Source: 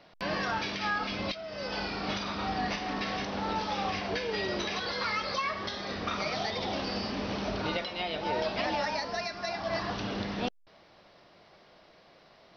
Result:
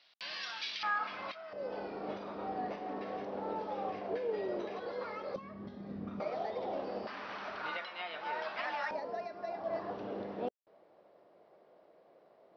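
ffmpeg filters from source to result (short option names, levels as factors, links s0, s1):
-af "asetnsamples=n=441:p=0,asendcmd='0.83 bandpass f 1200;1.53 bandpass f 480;5.36 bandpass f 190;6.2 bandpass f 540;7.07 bandpass f 1400;8.91 bandpass f 490',bandpass=f=3700:t=q:w=1.6:csg=0"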